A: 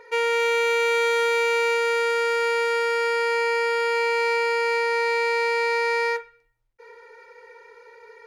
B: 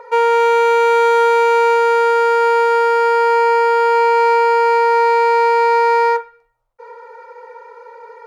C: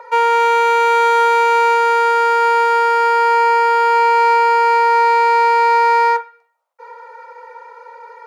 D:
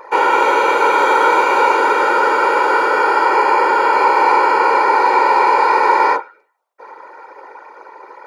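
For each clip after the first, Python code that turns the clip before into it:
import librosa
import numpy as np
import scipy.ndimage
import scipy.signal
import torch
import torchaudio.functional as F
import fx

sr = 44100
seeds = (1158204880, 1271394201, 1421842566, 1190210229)

y1 = fx.band_shelf(x, sr, hz=810.0, db=14.5, octaves=1.7)
y2 = scipy.signal.sosfilt(scipy.signal.butter(4, 540.0, 'highpass', fs=sr, output='sos'), y1)
y2 = y2 * 10.0 ** (2.0 / 20.0)
y3 = fx.whisperise(y2, sr, seeds[0])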